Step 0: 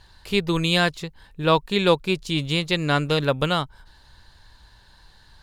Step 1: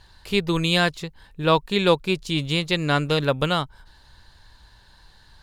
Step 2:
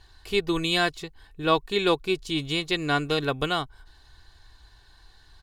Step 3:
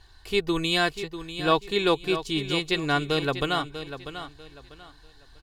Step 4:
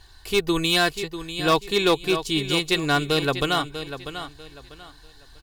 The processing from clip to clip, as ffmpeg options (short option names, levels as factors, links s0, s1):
-af anull
-af "aecho=1:1:2.7:0.52,volume=0.631"
-af "aecho=1:1:644|1288|1932:0.282|0.0761|0.0205"
-af "volume=5.62,asoftclip=hard,volume=0.178,crystalizer=i=1:c=0,volume=1.41"